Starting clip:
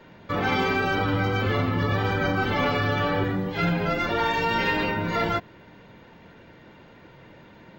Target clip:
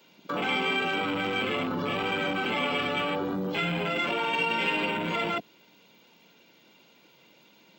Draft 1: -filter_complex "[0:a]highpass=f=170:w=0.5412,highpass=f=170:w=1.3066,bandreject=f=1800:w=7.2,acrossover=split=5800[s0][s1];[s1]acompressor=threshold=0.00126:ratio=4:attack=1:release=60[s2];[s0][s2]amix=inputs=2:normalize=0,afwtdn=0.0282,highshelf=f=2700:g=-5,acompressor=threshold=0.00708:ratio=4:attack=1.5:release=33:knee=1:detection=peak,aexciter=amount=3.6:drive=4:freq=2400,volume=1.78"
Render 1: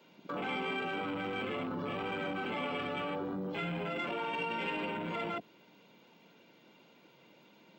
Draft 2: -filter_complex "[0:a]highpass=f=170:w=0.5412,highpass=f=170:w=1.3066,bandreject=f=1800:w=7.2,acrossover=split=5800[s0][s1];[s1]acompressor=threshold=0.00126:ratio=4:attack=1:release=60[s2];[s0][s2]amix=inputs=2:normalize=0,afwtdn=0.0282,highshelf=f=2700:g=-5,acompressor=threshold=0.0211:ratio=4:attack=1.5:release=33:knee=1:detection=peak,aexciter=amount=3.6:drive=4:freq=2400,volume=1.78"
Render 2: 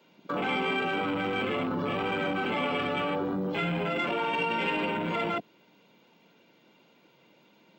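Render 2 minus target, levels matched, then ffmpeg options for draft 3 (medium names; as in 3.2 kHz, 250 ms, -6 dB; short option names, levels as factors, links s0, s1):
4 kHz band -3.5 dB
-filter_complex "[0:a]highpass=f=170:w=0.5412,highpass=f=170:w=1.3066,bandreject=f=1800:w=7.2,acrossover=split=5800[s0][s1];[s1]acompressor=threshold=0.00126:ratio=4:attack=1:release=60[s2];[s0][s2]amix=inputs=2:normalize=0,afwtdn=0.0282,highshelf=f=2700:g=5.5,acompressor=threshold=0.0211:ratio=4:attack=1.5:release=33:knee=1:detection=peak,aexciter=amount=3.6:drive=4:freq=2400,volume=1.78"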